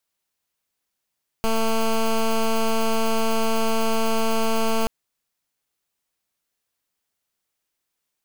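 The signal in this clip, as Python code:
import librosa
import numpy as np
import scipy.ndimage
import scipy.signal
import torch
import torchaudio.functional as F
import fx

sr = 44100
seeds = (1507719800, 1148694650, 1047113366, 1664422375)

y = fx.pulse(sr, length_s=3.43, hz=224.0, level_db=-20.0, duty_pct=12)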